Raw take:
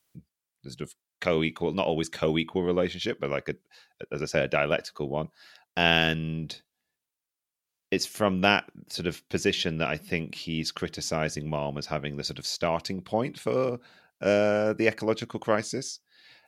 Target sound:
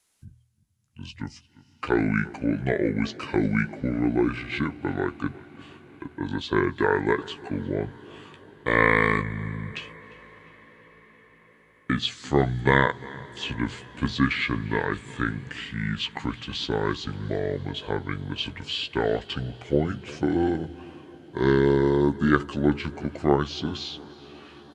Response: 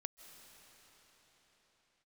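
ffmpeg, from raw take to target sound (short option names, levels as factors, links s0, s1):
-filter_complex "[0:a]acrossover=split=7900[s0][s1];[s1]acompressor=threshold=0.00178:ratio=4:attack=1:release=60[s2];[s0][s2]amix=inputs=2:normalize=0,bandreject=f=60:t=h:w=6,bandreject=f=120:t=h:w=6,bandreject=f=180:t=h:w=6,asetrate=29371,aresample=44100,asplit=2[s3][s4];[s4]adelay=14,volume=0.355[s5];[s3][s5]amix=inputs=2:normalize=0,asplit=2[s6][s7];[s7]adelay=351,lowpass=f=4700:p=1,volume=0.0891,asplit=2[s8][s9];[s9]adelay=351,lowpass=f=4700:p=1,volume=0.49,asplit=2[s10][s11];[s11]adelay=351,lowpass=f=4700:p=1,volume=0.49,asplit=2[s12][s13];[s13]adelay=351,lowpass=f=4700:p=1,volume=0.49[s14];[s6][s8][s10][s12][s14]amix=inputs=5:normalize=0,asplit=2[s15][s16];[1:a]atrim=start_sample=2205,asetrate=26019,aresample=44100,highshelf=f=4700:g=10[s17];[s16][s17]afir=irnorm=-1:irlink=0,volume=0.237[s18];[s15][s18]amix=inputs=2:normalize=0"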